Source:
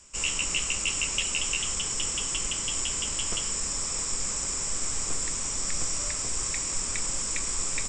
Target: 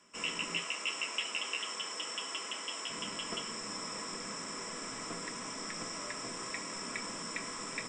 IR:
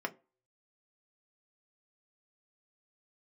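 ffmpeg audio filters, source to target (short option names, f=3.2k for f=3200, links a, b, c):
-filter_complex "[0:a]asettb=1/sr,asplit=3[a][b][c];[a]atrim=end=0.574[d];[b]atrim=start=0.57:end=2.9,asetpts=PTS-STARTPTS,afade=t=in:d=0.004:c=qsin,afade=t=out:st=2.326:d=0.004:c=qsin,highpass=420[e];[c]atrim=start=2.896[f];[d][e]acrossfade=d=0.004:c1=hsin:c2=qsin[g];[g][f]acrossfade=d=0.004:c1=qsin:c2=hsin[h];[1:a]atrim=start_sample=2205[i];[h][i]afir=irnorm=-1:irlink=0,volume=-6dB"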